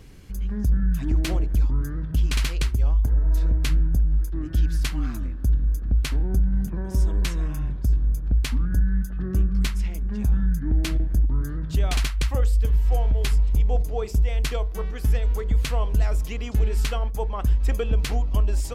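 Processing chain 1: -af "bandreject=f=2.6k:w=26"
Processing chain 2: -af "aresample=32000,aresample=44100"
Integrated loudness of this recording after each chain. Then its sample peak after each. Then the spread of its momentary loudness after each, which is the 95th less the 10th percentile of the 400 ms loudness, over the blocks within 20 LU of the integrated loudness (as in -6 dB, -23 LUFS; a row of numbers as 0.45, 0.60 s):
-24.5, -24.5 LUFS; -13.0, -13.5 dBFS; 5, 5 LU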